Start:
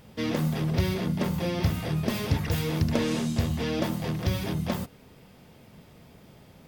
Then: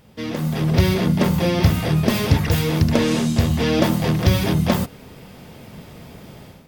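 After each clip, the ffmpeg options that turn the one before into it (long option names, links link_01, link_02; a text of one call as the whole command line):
ffmpeg -i in.wav -af "dynaudnorm=framelen=380:gausssize=3:maxgain=12dB" out.wav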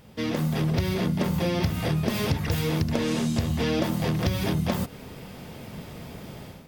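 ffmpeg -i in.wav -af "acompressor=threshold=-22dB:ratio=6" out.wav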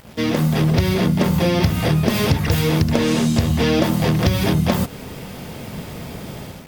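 ffmpeg -i in.wav -af "acrusher=bits=7:mix=0:aa=0.5,volume=8dB" out.wav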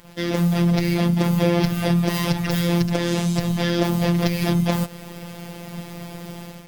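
ffmpeg -i in.wav -af "afftfilt=real='hypot(re,im)*cos(PI*b)':imag='0':win_size=1024:overlap=0.75" out.wav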